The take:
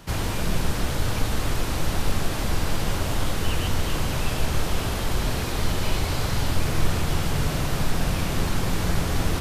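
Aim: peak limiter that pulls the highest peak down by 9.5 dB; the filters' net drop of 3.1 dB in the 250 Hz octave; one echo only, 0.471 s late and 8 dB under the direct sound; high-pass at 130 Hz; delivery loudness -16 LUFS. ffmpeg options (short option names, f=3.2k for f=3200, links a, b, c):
-af "highpass=130,equalizer=f=250:t=o:g=-3.5,alimiter=level_in=1.5dB:limit=-24dB:level=0:latency=1,volume=-1.5dB,aecho=1:1:471:0.398,volume=17.5dB"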